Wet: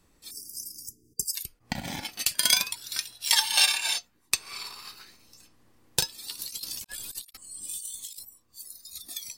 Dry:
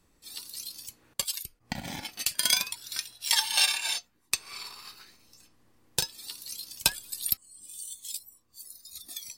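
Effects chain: 0.31–1.35 s: spectral selection erased 460–4700 Hz; 6.39–8.25 s: compressor with a negative ratio -43 dBFS, ratio -0.5; trim +2.5 dB

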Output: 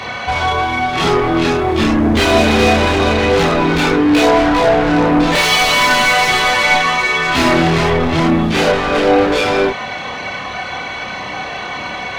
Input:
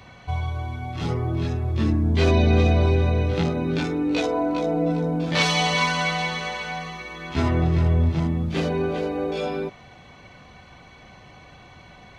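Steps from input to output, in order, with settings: 7.35–7.90 s: treble shelf 2.2 kHz +5.5 dB; overdrive pedal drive 32 dB, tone 3.7 kHz, clips at -6.5 dBFS; chorus voices 6, 0.31 Hz, delay 29 ms, depth 2.5 ms; trim +4.5 dB

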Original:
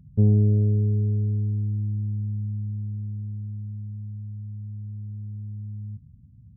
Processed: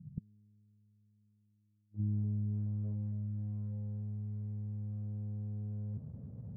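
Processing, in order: tracing distortion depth 0.15 ms; high-pass 110 Hz 12 dB/octave; reverse; upward compressor, threshold -32 dBFS; reverse; companded quantiser 6-bit; inverted gate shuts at -24 dBFS, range -41 dB; in parallel at -9.5 dB: bit crusher 8-bit; on the sum: low-pass sweep 180 Hz -> 490 Hz, 0.99–2.74 s; trim -6 dB

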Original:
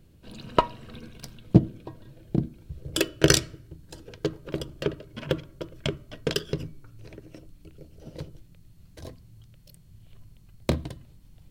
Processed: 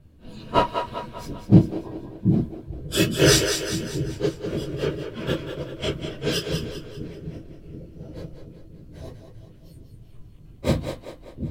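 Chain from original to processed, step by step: phase randomisation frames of 100 ms; two-band feedback delay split 340 Hz, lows 732 ms, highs 196 ms, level -7 dB; tape noise reduction on one side only decoder only; trim +3.5 dB

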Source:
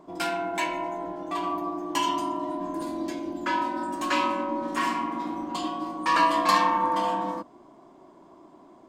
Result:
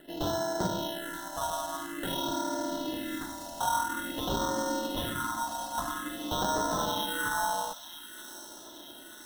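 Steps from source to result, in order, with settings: peaking EQ 130 Hz -14.5 dB 2.1 oct; band-stop 1.2 kHz, Q 5.3; in parallel at -2 dB: compression, threshold -37 dBFS, peak gain reduction 16.5 dB; on the sum: peak limiter -18.5 dBFS, peak gain reduction 8 dB; sample-and-hold 18×; phase shifter stages 4, 0.51 Hz, lowest notch 350–2800 Hz; on a send: feedback echo behind a high-pass 894 ms, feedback 66%, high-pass 2.5 kHz, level -10 dB; on the sum: speed mistake 25 fps video run at 24 fps

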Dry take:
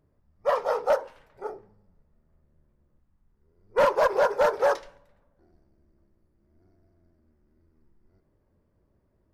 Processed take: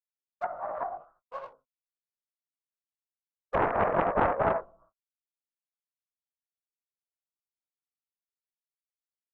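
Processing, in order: Doppler pass-by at 4.18 s, 22 m/s, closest 24 m; Chebyshev low-pass 1.2 kHz, order 6; tilt shelf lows -9 dB, about 760 Hz; gate -58 dBFS, range -51 dB; delay 77 ms -4.5 dB; pitch shift +3 st; waveshaping leveller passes 1; chorus 2.7 Hz, delay 17.5 ms, depth 2.5 ms; low-pass that closes with the level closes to 470 Hz, closed at -32 dBFS; loudspeaker Doppler distortion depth 0.96 ms; trim +7 dB

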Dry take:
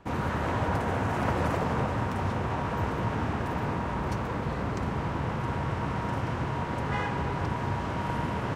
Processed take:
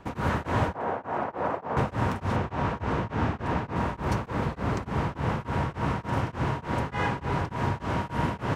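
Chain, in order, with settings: 0.74–1.77 s: band-pass filter 710 Hz, Q 0.92; 2.36–3.76 s: distance through air 54 m; tremolo of two beating tones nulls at 3.4 Hz; trim +4.5 dB

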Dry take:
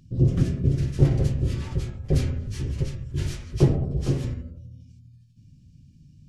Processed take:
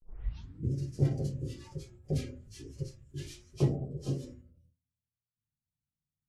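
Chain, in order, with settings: tape start-up on the opening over 0.74 s; spectral noise reduction 13 dB; hum notches 60/120/180/240/300/360 Hz; gate with hold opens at -49 dBFS; trim -8 dB

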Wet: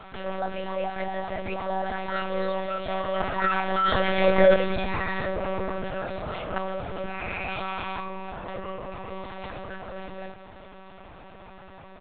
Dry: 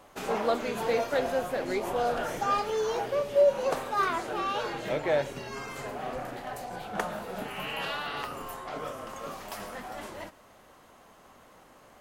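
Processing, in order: Doppler pass-by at 4.37 s, 48 m/s, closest 9.8 m; comb 3.8 ms, depth 78%; monotone LPC vocoder at 8 kHz 190 Hz; level flattener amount 50%; trim +5.5 dB

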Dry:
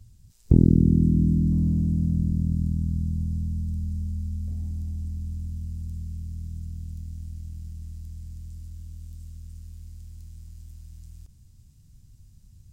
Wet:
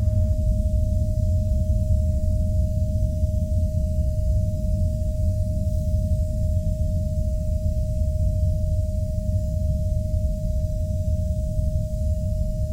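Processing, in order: Paulstretch 8.4×, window 0.05 s, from 5.21 s; whistle 620 Hz -47 dBFS; gated-style reverb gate 350 ms flat, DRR 2 dB; trim +8.5 dB

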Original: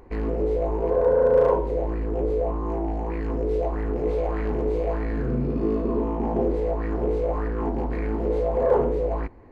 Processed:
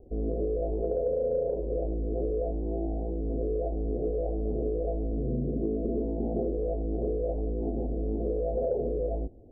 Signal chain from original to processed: steep low-pass 710 Hz 72 dB/octave; compression, threshold -22 dBFS, peak gain reduction 8.5 dB; trim -3 dB

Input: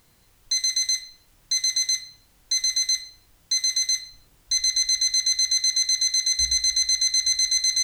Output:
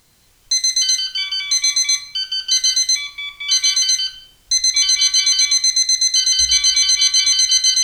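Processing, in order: peaking EQ 5.8 kHz +5 dB 2.1 oct; ever faster or slower copies 131 ms, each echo -5 st, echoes 2, each echo -6 dB; trim +2 dB

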